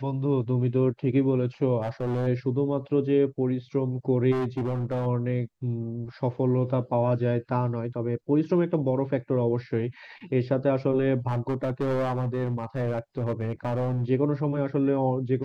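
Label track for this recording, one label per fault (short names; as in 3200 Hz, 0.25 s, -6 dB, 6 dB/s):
1.810000	2.280000	clipped -24 dBFS
4.310000	5.070000	clipped -24 dBFS
11.270000	14.050000	clipped -22.5 dBFS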